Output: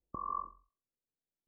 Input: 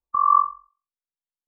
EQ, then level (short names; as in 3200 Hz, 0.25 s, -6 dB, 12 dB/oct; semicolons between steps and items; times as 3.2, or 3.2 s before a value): Gaussian blur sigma 18 samples; tilt +2.5 dB/oct; +15.5 dB